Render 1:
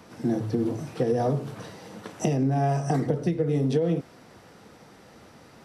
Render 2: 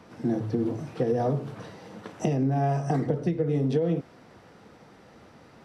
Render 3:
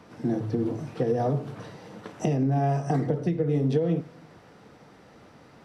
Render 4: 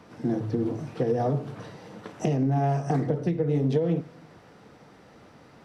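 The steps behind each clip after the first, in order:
treble shelf 5.9 kHz -11 dB; trim -1 dB
reverberation RT60 0.85 s, pre-delay 7 ms, DRR 17.5 dB
loudspeaker Doppler distortion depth 0.13 ms

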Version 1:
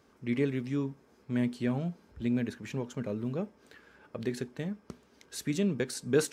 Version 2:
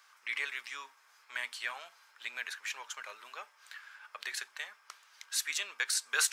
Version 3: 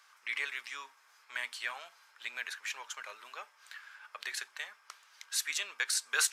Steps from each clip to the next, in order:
high-pass 1.1 kHz 24 dB/octave; trim +8 dB
resampled via 32 kHz

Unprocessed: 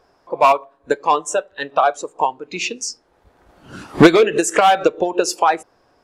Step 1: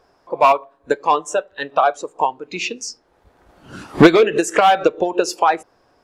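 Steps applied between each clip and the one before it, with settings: dynamic bell 8.9 kHz, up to -6 dB, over -41 dBFS, Q 0.95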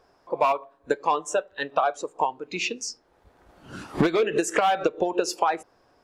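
compression 12:1, threshold -14 dBFS, peak gain reduction 11 dB; trim -3.5 dB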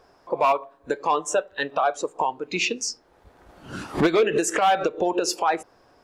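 peak limiter -17 dBFS, peak gain reduction 9 dB; trim +4.5 dB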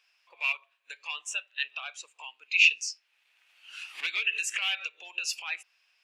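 resonant high-pass 2.6 kHz, resonance Q 6; trim -7.5 dB

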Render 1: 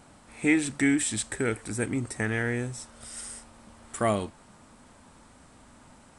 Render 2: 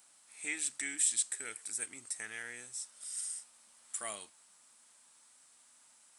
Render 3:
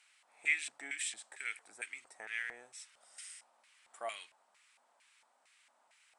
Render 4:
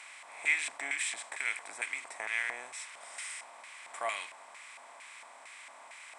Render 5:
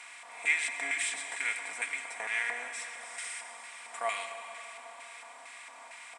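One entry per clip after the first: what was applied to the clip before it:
differentiator
LFO band-pass square 2.2 Hz 720–2300 Hz; trim +8.5 dB
spectral levelling over time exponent 0.6; peaking EQ 1 kHz +10.5 dB 0.52 oct; trim +1 dB
comb 4.2 ms, depth 60%; on a send at -7 dB: reverberation RT60 3.6 s, pre-delay 83 ms

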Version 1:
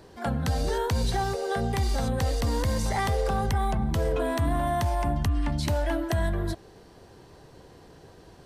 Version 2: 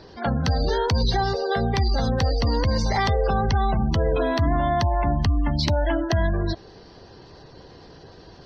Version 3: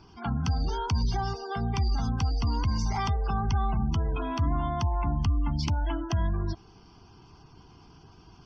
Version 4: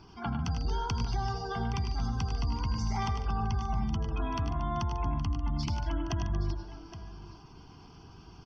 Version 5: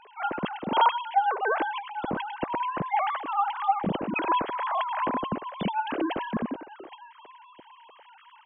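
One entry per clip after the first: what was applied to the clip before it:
spectral gate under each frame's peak -30 dB strong; resonant high shelf 6.8 kHz -11.5 dB, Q 3; trim +4.5 dB
static phaser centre 2.7 kHz, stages 8; trim -4 dB
compression 3:1, threshold -31 dBFS, peak gain reduction 8 dB; on a send: multi-tap echo 83/101/146/232/819 ms -14/-7.5/-15/-14.5/-13 dB
formants replaced by sine waves; trim +2.5 dB

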